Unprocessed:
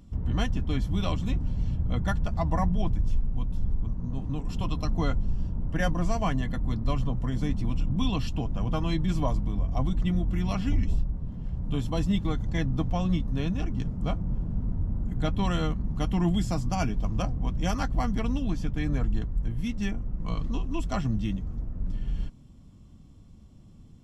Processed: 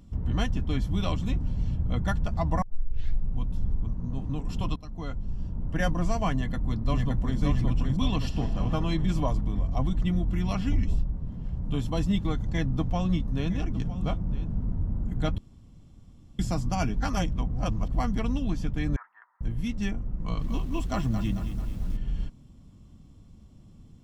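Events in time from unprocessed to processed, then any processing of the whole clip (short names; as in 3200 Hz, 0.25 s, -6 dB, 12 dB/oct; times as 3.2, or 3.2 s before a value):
2.62 tape start 0.72 s
4.76–5.8 fade in, from -17.5 dB
6.34–7.39 echo throw 0.57 s, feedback 55%, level -3 dB
8.19–8.65 reverb throw, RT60 3 s, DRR 6 dB
12.44–14.48 echo 0.959 s -15.5 dB
15.38–16.39 room tone
17–17.88 reverse
18.96–19.41 Chebyshev band-pass 910–1900 Hz, order 3
20.18–21.97 lo-fi delay 0.221 s, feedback 55%, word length 8-bit, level -9 dB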